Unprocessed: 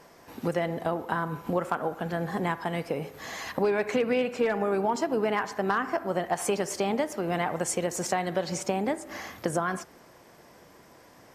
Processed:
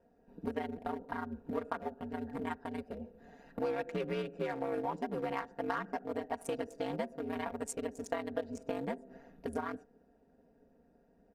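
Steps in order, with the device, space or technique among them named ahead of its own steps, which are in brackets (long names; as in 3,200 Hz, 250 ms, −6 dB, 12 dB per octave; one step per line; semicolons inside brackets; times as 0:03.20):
adaptive Wiener filter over 41 samples
parametric band 11,000 Hz +5 dB 0.41 octaves
ring-modulated robot voice (ring modulation 71 Hz; comb filter 4.3 ms, depth 73%)
level −7 dB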